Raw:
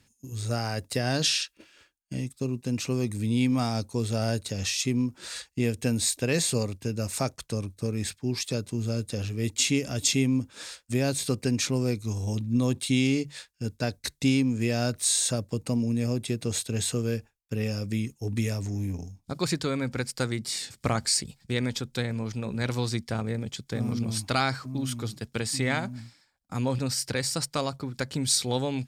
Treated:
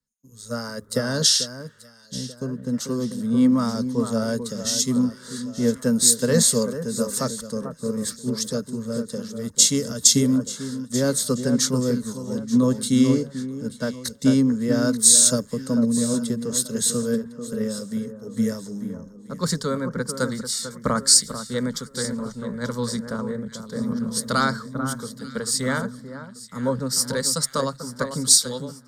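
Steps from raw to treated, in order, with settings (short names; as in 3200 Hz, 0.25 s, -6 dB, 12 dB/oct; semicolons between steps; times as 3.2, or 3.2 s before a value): ending faded out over 0.60 s; fixed phaser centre 500 Hz, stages 8; on a send: echo with dull and thin repeats by turns 0.443 s, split 1600 Hz, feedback 63%, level -6.5 dB; on the sum: three-band expander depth 70%; gain +6.5 dB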